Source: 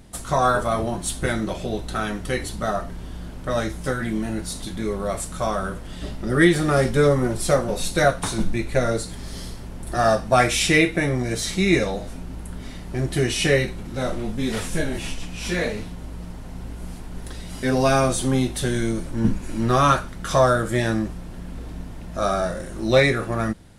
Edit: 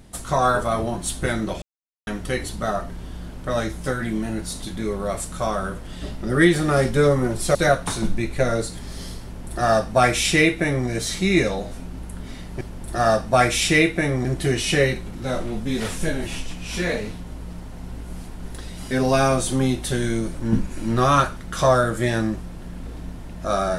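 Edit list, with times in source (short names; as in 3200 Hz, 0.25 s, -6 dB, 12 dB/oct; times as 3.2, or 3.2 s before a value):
1.62–2.07 mute
7.55–7.91 cut
9.6–11.24 copy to 12.97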